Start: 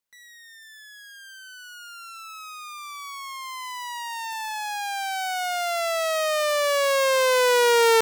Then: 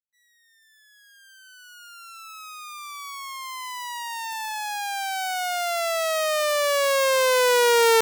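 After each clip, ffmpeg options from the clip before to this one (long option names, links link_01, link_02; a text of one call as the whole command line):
ffmpeg -i in.wav -af "agate=range=-33dB:threshold=-38dB:ratio=3:detection=peak,highshelf=frequency=8300:gain=4" out.wav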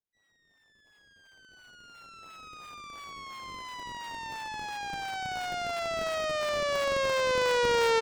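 ffmpeg -i in.wav -filter_complex "[0:a]acrossover=split=910|6900[link_01][link_02][link_03];[link_03]acrusher=samples=32:mix=1:aa=0.000001:lfo=1:lforange=51.2:lforate=2.9[link_04];[link_01][link_02][link_04]amix=inputs=3:normalize=0,asplit=2[link_05][link_06];[link_06]adelay=758,volume=-17dB,highshelf=frequency=4000:gain=-17.1[link_07];[link_05][link_07]amix=inputs=2:normalize=0,volume=-7dB" out.wav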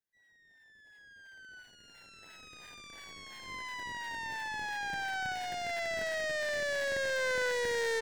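ffmpeg -i in.wav -af "asoftclip=type=tanh:threshold=-28dB,aeval=exprs='0.0398*(cos(1*acos(clip(val(0)/0.0398,-1,1)))-cos(1*PI/2))+0.00141*(cos(8*acos(clip(val(0)/0.0398,-1,1)))-cos(8*PI/2))':channel_layout=same,superequalizer=10b=0.316:11b=2.51,volume=-2dB" out.wav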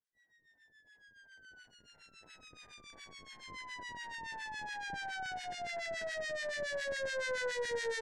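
ffmpeg -i in.wav -filter_complex "[0:a]lowpass=frequency=10000:width=0.5412,lowpass=frequency=10000:width=1.3066,acrossover=split=1300[link_01][link_02];[link_01]aeval=exprs='val(0)*(1-1/2+1/2*cos(2*PI*7.1*n/s))':channel_layout=same[link_03];[link_02]aeval=exprs='val(0)*(1-1/2-1/2*cos(2*PI*7.1*n/s))':channel_layout=same[link_04];[link_03][link_04]amix=inputs=2:normalize=0" out.wav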